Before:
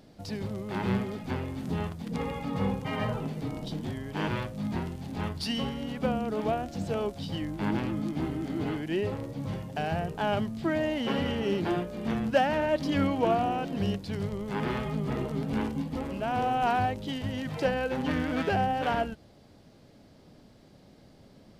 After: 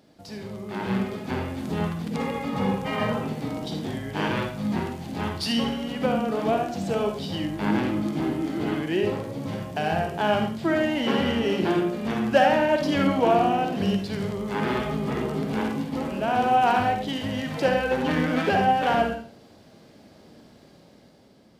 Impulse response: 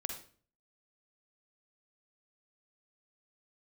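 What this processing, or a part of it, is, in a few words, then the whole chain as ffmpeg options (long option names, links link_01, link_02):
far laptop microphone: -filter_complex "[1:a]atrim=start_sample=2205[link_01];[0:a][link_01]afir=irnorm=-1:irlink=0,highpass=frequency=180:poles=1,dynaudnorm=framelen=220:gausssize=9:maxgain=6.5dB"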